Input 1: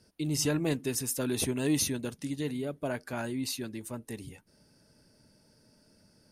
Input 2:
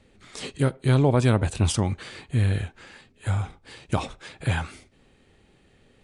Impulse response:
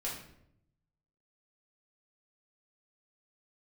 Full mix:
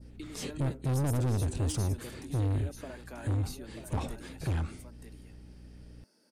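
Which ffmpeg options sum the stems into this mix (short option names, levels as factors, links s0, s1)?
-filter_complex "[0:a]acompressor=threshold=0.0158:ratio=6,highpass=f=230:w=0.5412,highpass=f=230:w=1.3066,volume=0.631,asplit=2[s0][s1];[s1]volume=0.422[s2];[1:a]lowshelf=f=320:g=11,asoftclip=type=tanh:threshold=0.0891,aeval=exprs='val(0)+0.00708*(sin(2*PI*60*n/s)+sin(2*PI*2*60*n/s)/2+sin(2*PI*3*60*n/s)/3+sin(2*PI*4*60*n/s)/4+sin(2*PI*5*60*n/s)/5)':c=same,volume=0.501[s3];[s2]aecho=0:1:937:1[s4];[s0][s3][s4]amix=inputs=3:normalize=0,adynamicequalizer=threshold=0.002:dfrequency=2600:dqfactor=0.74:tfrequency=2600:tqfactor=0.74:attack=5:release=100:ratio=0.375:range=2.5:mode=cutabove:tftype=bell"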